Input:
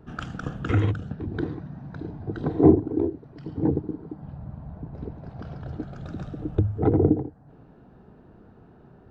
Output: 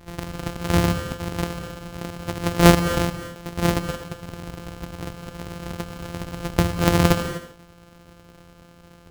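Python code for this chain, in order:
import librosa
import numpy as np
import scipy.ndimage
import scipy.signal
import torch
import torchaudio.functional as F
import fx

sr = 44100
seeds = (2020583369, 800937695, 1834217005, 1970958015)

y = np.r_[np.sort(x[:len(x) // 256 * 256].reshape(-1, 256), axis=1).ravel(), x[len(x) // 256 * 256:]]
y = fx.rev_gated(y, sr, seeds[0], gate_ms=270, shape='rising', drr_db=10.0)
y = F.gain(torch.from_numpy(y), 2.5).numpy()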